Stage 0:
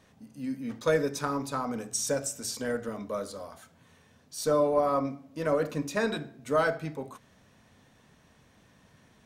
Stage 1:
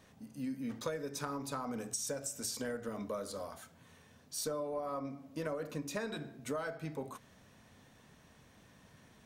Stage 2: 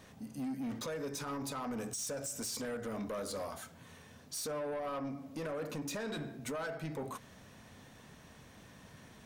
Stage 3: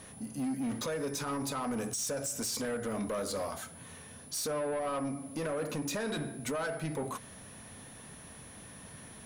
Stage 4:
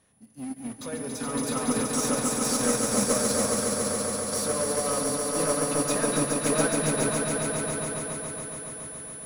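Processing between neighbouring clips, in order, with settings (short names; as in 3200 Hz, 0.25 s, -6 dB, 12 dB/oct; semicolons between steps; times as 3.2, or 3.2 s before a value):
high shelf 11000 Hz +5 dB; compressor 10:1, threshold -34 dBFS, peak gain reduction 14.5 dB; gain -1 dB
limiter -32 dBFS, peak gain reduction 9 dB; soft clip -39.5 dBFS, distortion -13 dB; gain +5.5 dB
whine 10000 Hz -56 dBFS; gain +4.5 dB
swelling echo 0.14 s, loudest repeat 5, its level -4.5 dB; upward expander 2.5:1, over -41 dBFS; gain +6.5 dB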